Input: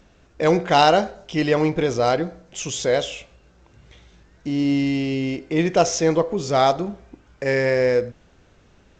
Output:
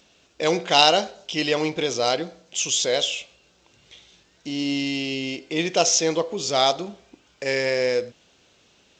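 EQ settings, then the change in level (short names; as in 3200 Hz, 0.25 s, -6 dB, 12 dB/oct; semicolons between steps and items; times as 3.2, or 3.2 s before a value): HPF 330 Hz 6 dB/oct; resonant high shelf 2300 Hz +7.5 dB, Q 1.5; -2.0 dB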